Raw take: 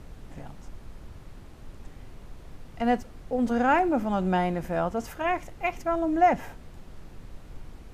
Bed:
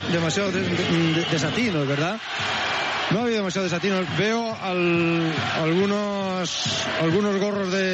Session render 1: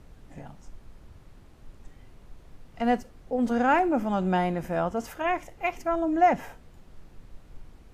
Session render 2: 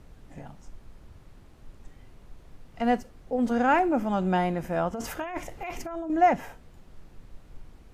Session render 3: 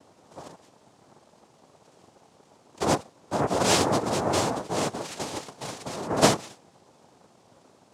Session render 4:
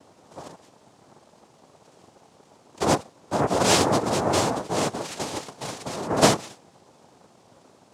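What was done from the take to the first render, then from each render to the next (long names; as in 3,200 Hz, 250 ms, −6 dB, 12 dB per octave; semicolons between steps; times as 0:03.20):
noise reduction from a noise print 6 dB
0:04.93–0:06.10: compressor whose output falls as the input rises −33 dBFS
cochlear-implant simulation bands 2
level +2.5 dB; brickwall limiter −3 dBFS, peak gain reduction 1 dB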